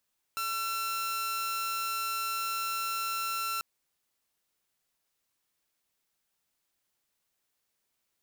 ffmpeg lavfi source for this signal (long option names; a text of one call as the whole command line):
ffmpeg -f lavfi -i "aevalsrc='0.0398*(2*mod(1350*t,1)-1)':duration=3.24:sample_rate=44100" out.wav